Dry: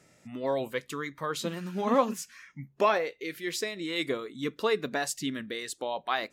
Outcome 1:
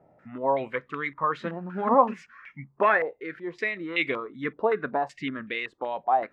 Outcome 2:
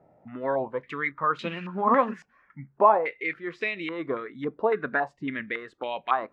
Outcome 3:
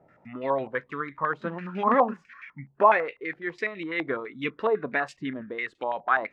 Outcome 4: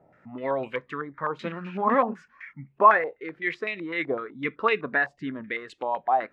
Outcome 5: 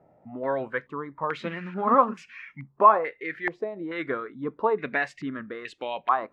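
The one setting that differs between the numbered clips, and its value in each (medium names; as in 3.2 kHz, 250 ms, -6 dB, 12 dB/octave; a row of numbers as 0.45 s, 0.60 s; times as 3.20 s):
step-sequenced low-pass, rate: 5.3 Hz, 3.6 Hz, 12 Hz, 7.9 Hz, 2.3 Hz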